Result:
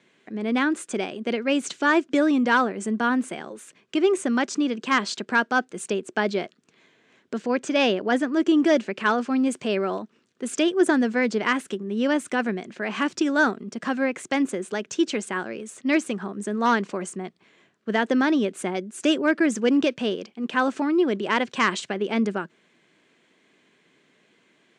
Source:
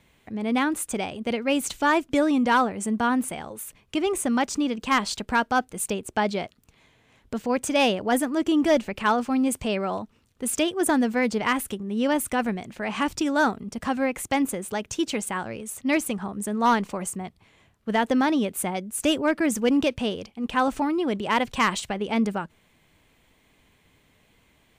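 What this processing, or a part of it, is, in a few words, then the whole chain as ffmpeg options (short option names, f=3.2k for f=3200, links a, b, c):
television speaker: -filter_complex "[0:a]asettb=1/sr,asplit=3[a][b][c];[a]atrim=end=7.504[d];[b]atrim=start=7.5:end=8.35,asetpts=PTS-STARTPTS,afade=t=in:d=0.004:c=qsin,afade=t=out:st=0.846:d=0.004:c=qsin,lowpass=6.4k[e];[c]atrim=start=8.346[f];[d][e]acrossfade=d=0.004:c1=hsin:c2=qsin[g];[g][f]acrossfade=d=0.004:c1=qsin:c2=hsin,highpass=f=170:w=0.5412,highpass=f=170:w=1.3066,equalizer=f=370:t=q:w=4:g=7,equalizer=f=850:t=q:w=4:g=-5,equalizer=f=1.6k:t=q:w=4:g=5,lowpass=f=7.7k:w=0.5412,lowpass=f=7.7k:w=1.3066"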